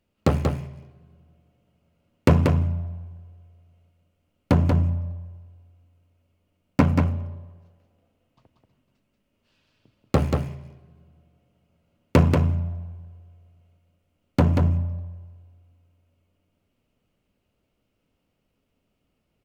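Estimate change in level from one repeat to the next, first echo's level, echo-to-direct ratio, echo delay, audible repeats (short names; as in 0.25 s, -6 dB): no steady repeat, -4.5 dB, -4.5 dB, 0.185 s, 1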